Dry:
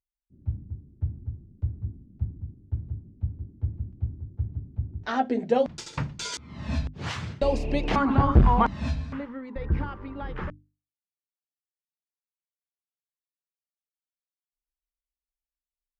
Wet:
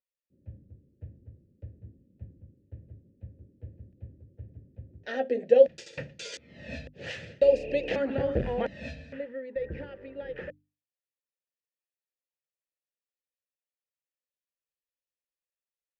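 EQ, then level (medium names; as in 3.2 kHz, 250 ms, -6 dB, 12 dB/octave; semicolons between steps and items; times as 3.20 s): vowel filter e; tone controls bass +7 dB, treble +12 dB; bass shelf 79 Hz +5.5 dB; +7.5 dB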